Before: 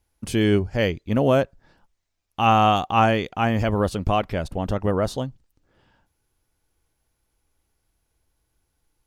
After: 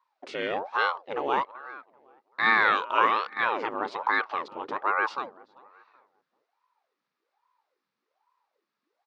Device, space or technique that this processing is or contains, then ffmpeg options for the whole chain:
voice changer toy: -filter_complex "[0:a]asplit=2[link_01][link_02];[link_02]adelay=385,lowpass=frequency=2000:poles=1,volume=-20dB,asplit=2[link_03][link_04];[link_04]adelay=385,lowpass=frequency=2000:poles=1,volume=0.32,asplit=2[link_05][link_06];[link_06]adelay=385,lowpass=frequency=2000:poles=1,volume=0.32[link_07];[link_01][link_03][link_05][link_07]amix=inputs=4:normalize=0,aeval=exprs='val(0)*sin(2*PI*580*n/s+580*0.75/1.2*sin(2*PI*1.2*n/s))':channel_layout=same,highpass=580,equalizer=frequency=680:width_type=q:width=4:gain=-8,equalizer=frequency=1200:width_type=q:width=4:gain=4,equalizer=frequency=3100:width_type=q:width=4:gain=-5,lowpass=frequency=4500:width=0.5412,lowpass=frequency=4500:width=1.3066"

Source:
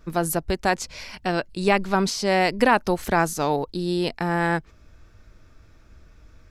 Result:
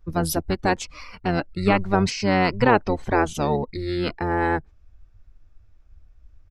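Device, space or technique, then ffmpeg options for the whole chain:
octave pedal: -filter_complex "[0:a]asplit=3[link_01][link_02][link_03];[link_01]afade=type=out:start_time=2.1:duration=0.02[link_04];[link_02]lowpass=7500,afade=type=in:start_time=2.1:duration=0.02,afade=type=out:start_time=3.33:duration=0.02[link_05];[link_03]afade=type=in:start_time=3.33:duration=0.02[link_06];[link_04][link_05][link_06]amix=inputs=3:normalize=0,afftdn=noise_reduction=15:noise_floor=-38,asplit=2[link_07][link_08];[link_08]asetrate=22050,aresample=44100,atempo=2,volume=-2dB[link_09];[link_07][link_09]amix=inputs=2:normalize=0,volume=-1.5dB"

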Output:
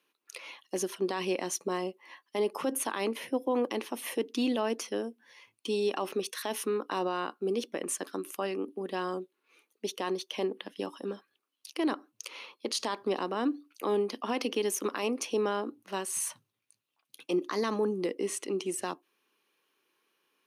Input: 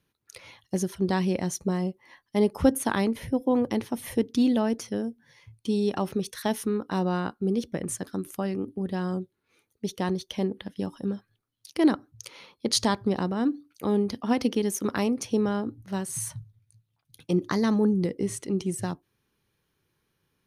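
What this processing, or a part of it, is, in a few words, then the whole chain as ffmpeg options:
laptop speaker: -af "highpass=frequency=290:width=0.5412,highpass=frequency=290:width=1.3066,equalizer=frequency=1100:width_type=o:width=0.29:gain=6,equalizer=frequency=2700:width_type=o:width=0.41:gain=8,alimiter=limit=-21dB:level=0:latency=1:release=36"

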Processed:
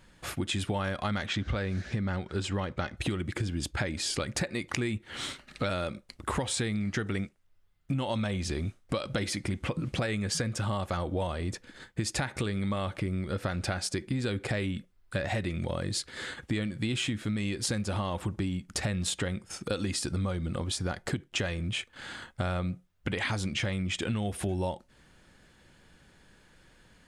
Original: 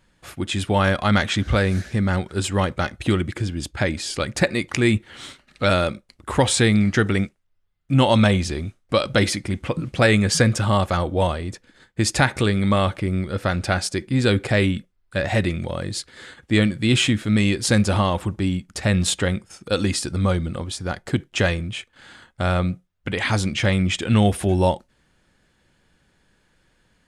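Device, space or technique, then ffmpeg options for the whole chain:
serial compression, peaks first: -filter_complex "[0:a]acompressor=threshold=-27dB:ratio=6,acompressor=threshold=-39dB:ratio=1.5,asettb=1/sr,asplit=3[link_01][link_02][link_03];[link_01]atrim=end=1.264[link_04];[link_02]atrim=start=1.26:end=2.97,asetpts=PTS-STARTPTS,afade=type=in:duration=0.004:curve=qsin,afade=type=out:start_time=1.706:duration=0.004:curve=qsin,lowpass=5800[link_05];[link_03]atrim=start=2.966[link_06];[link_04][link_05]acrossfade=duration=0.004:curve1=hsin:curve2=qsin[link_07];[link_07][link_06]acrossfade=duration=0.004:curve1=qsin:curve2=hsin,volume=3.5dB"

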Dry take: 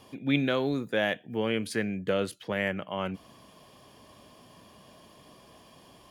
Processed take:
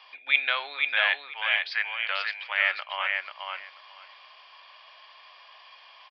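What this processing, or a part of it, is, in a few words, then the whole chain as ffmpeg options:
musical greeting card: -filter_complex "[0:a]asettb=1/sr,asplit=3[link_01][link_02][link_03];[link_01]atrim=end=0.874[link_04];[link_02]atrim=start=0.87:end=2.62,asetpts=PTS-STARTPTS,afade=type=in:duration=0.004:curve=qsin,afade=type=out:start_time=1.746:duration=0.004:curve=qsin,highpass=frequency=610:width=0.5412,highpass=frequency=610:width=1.3066[link_05];[link_03]atrim=start=2.616[link_06];[link_04][link_05]acrossfade=duration=0.004:curve1=hsin:curve2=qsin[link_07];[link_07][link_06]acrossfade=duration=0.004:curve1=qsin:curve2=hsin,aecho=1:1:489|978|1467:0.596|0.0953|0.0152,aresample=11025,aresample=44100,highpass=frequency=880:width=0.5412,highpass=frequency=880:width=1.3066,equalizer=frequency=2300:width_type=o:width=0.57:gain=6.5,volume=5dB"

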